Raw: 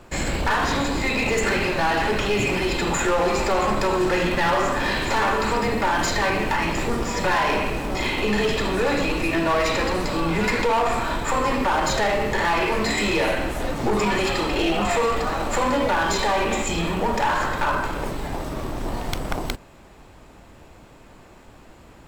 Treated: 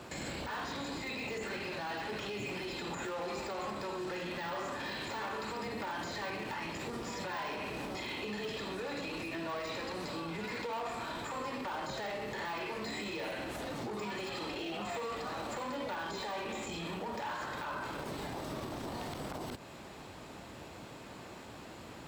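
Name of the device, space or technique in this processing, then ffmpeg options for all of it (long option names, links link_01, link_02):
broadcast voice chain: -af "highpass=100,deesser=0.7,acompressor=threshold=-34dB:ratio=6,equalizer=frequency=4100:width_type=o:width=0.94:gain=4.5,alimiter=level_in=7.5dB:limit=-24dB:level=0:latency=1:release=41,volume=-7.5dB"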